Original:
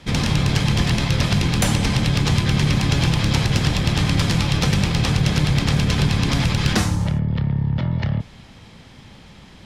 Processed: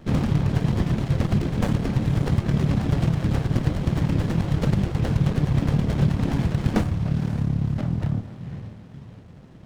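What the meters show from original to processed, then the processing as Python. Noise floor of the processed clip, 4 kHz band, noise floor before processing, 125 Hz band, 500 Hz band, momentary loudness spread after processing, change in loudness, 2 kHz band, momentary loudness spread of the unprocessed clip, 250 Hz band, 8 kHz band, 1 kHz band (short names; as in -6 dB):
-45 dBFS, -17.0 dB, -45 dBFS, -3.0 dB, -2.0 dB, 6 LU, -4.0 dB, -12.0 dB, 3 LU, -2.0 dB, under -15 dB, -6.5 dB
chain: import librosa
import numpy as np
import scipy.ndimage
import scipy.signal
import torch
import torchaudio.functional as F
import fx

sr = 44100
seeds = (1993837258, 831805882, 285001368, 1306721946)

y = fx.highpass(x, sr, hz=310.0, slope=6)
y = fx.dereverb_blind(y, sr, rt60_s=1.9)
y = fx.tilt_eq(y, sr, slope=-3.0)
y = fx.echo_diffused(y, sr, ms=524, feedback_pct=41, wet_db=-11.0)
y = fx.running_max(y, sr, window=33)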